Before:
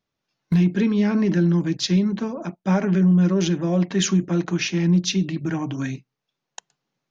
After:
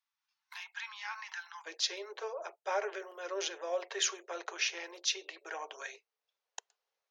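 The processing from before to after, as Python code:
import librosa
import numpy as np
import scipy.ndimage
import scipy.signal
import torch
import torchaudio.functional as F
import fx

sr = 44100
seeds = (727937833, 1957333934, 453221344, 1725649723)

y = fx.steep_highpass(x, sr, hz=fx.steps((0.0, 830.0), (1.65, 420.0)), slope=72)
y = y * librosa.db_to_amplitude(-6.5)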